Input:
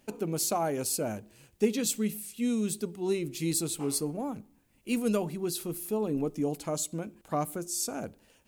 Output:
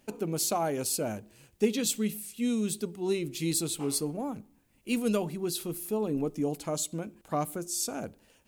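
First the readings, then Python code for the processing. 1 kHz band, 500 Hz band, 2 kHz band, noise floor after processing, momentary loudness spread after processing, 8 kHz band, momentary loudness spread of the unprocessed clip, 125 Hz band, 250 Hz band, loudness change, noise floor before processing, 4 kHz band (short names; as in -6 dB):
0.0 dB, 0.0 dB, +1.0 dB, -65 dBFS, 8 LU, 0.0 dB, 8 LU, 0.0 dB, 0.0 dB, 0.0 dB, -65 dBFS, +2.0 dB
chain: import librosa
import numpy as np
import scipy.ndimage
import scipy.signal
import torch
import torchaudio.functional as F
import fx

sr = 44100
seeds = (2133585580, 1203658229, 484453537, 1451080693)

y = fx.dynamic_eq(x, sr, hz=3400.0, q=1.9, threshold_db=-50.0, ratio=4.0, max_db=4)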